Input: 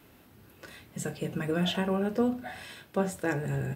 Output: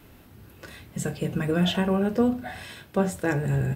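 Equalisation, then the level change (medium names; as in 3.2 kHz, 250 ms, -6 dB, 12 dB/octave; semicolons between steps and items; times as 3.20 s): bass shelf 94 Hz +11.5 dB; +3.5 dB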